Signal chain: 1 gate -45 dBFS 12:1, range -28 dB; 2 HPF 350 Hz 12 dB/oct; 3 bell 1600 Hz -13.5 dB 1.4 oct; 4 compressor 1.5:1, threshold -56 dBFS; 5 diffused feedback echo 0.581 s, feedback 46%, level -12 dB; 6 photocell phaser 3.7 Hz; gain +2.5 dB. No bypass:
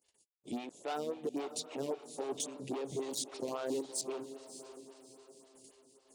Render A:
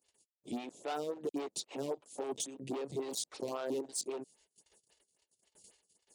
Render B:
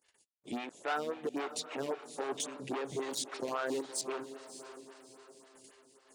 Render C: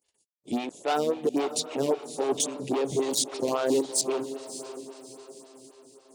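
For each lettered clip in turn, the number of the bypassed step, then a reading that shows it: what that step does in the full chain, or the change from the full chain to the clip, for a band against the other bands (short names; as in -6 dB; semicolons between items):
5, momentary loudness spread change -14 LU; 3, 2 kHz band +9.5 dB; 4, mean gain reduction 10.0 dB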